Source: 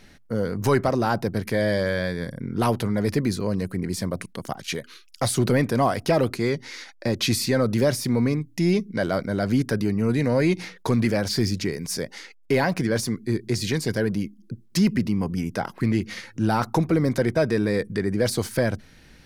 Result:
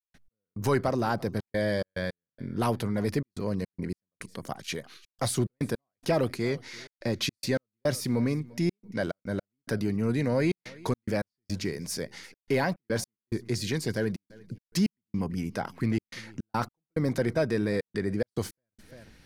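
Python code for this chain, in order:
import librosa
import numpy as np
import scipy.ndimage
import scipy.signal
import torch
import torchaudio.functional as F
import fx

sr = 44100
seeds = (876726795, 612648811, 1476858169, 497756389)

p1 = x + fx.echo_feedback(x, sr, ms=344, feedback_pct=27, wet_db=-23, dry=0)
p2 = fx.step_gate(p1, sr, bpm=107, pattern='.x..xxxxxx.xx', floor_db=-60.0, edge_ms=4.5)
y = p2 * librosa.db_to_amplitude(-5.0)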